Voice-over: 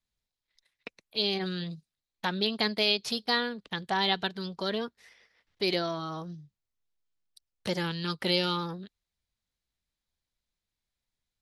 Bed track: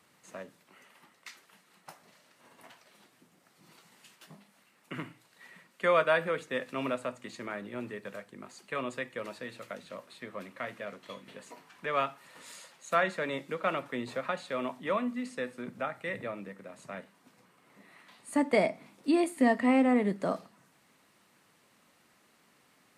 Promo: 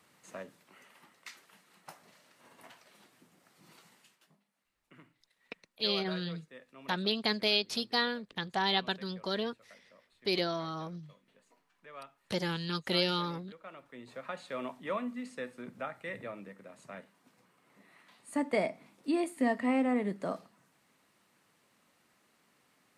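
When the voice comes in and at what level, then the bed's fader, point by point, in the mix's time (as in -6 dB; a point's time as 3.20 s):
4.65 s, -2.5 dB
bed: 3.87 s -0.5 dB
4.40 s -18.5 dB
13.71 s -18.5 dB
14.44 s -4.5 dB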